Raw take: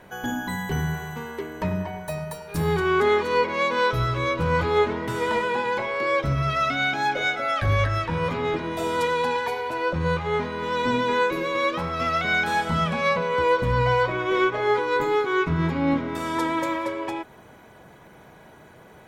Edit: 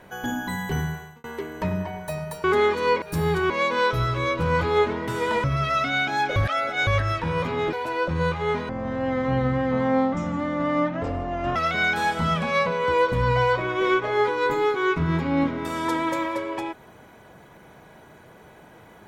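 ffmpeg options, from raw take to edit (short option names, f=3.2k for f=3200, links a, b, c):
-filter_complex "[0:a]asplit=11[a][b][c][d][e][f][g][h][i][j][k];[a]atrim=end=1.24,asetpts=PTS-STARTPTS,afade=t=out:st=0.78:d=0.46[l];[b]atrim=start=1.24:end=2.442,asetpts=PTS-STARTPTS,afade=t=in:d=0.004:c=hsin[m];[c]atrim=start=2.918:end=3.502[n];[d]atrim=start=2.438:end=2.922[o];[e]atrim=start=3.498:end=5.442[p];[f]atrim=start=6.298:end=7.222[q];[g]atrim=start=7.218:end=7.732,asetpts=PTS-STARTPTS,areverse[r];[h]atrim=start=7.728:end=8.592[s];[i]atrim=start=9.578:end=10.544[t];[j]atrim=start=10.54:end=12.06,asetpts=PTS-STARTPTS,asetrate=23373,aresample=44100,atrim=end_sample=126475,asetpts=PTS-STARTPTS[u];[k]atrim=start=12.056[v];[l][m]concat=n=2:v=0:a=1[w];[w][n]acrossfade=d=0.004:c1=hsin:c2=hsin[x];[x][o]acrossfade=d=0.004:c1=hsin:c2=hsin[y];[y][p]acrossfade=d=0.004:c1=hsin:c2=hsin[z];[z][q]acrossfade=d=0.004:c1=hsin:c2=hsin[aa];[aa][r]acrossfade=d=0.004:c1=hsin:c2=hsin[ab];[ab][s]acrossfade=d=0.004:c1=hsin:c2=hsin[ac];[ac][t]acrossfade=d=0.004:c1=hsin:c2=hsin[ad];[ad][u]acrossfade=d=0.004:c1=hsin:c2=hsin[ae];[ae][v]acrossfade=d=0.004:c1=hsin:c2=hsin"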